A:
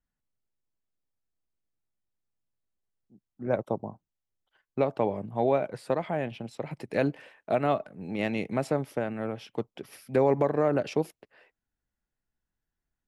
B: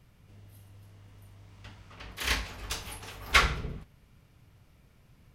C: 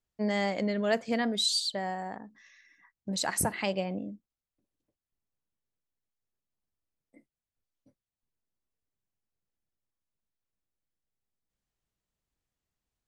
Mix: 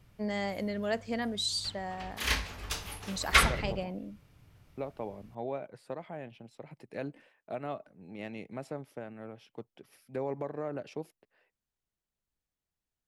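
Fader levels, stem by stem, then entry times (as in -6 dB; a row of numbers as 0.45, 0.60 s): -12.0, -0.5, -4.5 dB; 0.00, 0.00, 0.00 s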